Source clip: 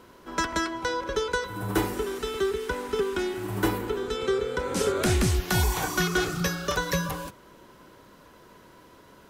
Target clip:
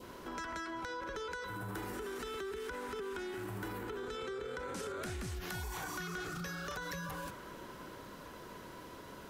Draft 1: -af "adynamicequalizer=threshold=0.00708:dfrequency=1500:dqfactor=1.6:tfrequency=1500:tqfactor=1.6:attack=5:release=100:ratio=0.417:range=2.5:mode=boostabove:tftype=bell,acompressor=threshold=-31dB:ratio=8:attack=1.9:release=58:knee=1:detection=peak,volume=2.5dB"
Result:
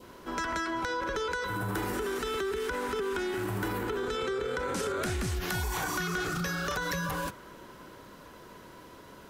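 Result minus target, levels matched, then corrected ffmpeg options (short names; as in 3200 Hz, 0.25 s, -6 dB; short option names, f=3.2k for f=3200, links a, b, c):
compressor: peak gain reduction -9 dB
-af "adynamicequalizer=threshold=0.00708:dfrequency=1500:dqfactor=1.6:tfrequency=1500:tqfactor=1.6:attack=5:release=100:ratio=0.417:range=2.5:mode=boostabove:tftype=bell,acompressor=threshold=-41.5dB:ratio=8:attack=1.9:release=58:knee=1:detection=peak,volume=2.5dB"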